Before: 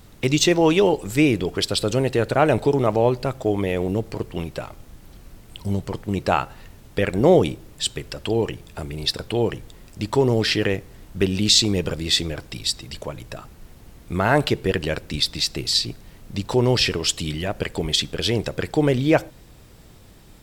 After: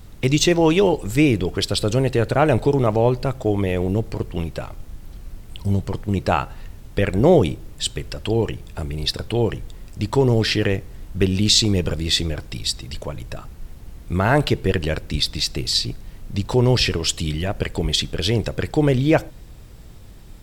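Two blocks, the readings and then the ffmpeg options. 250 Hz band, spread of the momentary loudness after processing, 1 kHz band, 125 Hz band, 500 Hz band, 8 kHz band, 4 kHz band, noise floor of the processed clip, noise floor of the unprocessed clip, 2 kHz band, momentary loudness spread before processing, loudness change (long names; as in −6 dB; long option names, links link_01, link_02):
+1.5 dB, 14 LU, 0.0 dB, +4.0 dB, +0.5 dB, 0.0 dB, 0.0 dB, −41 dBFS, −47 dBFS, 0.0 dB, 15 LU, +1.0 dB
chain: -af "lowshelf=frequency=100:gain=10.5"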